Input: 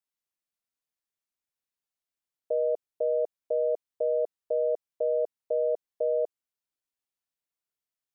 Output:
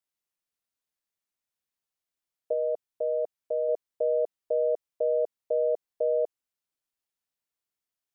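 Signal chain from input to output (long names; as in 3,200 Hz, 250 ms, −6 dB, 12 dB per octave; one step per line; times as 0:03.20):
0:02.53–0:03.69: parametric band 400 Hz −4 dB 1.1 octaves
level +1 dB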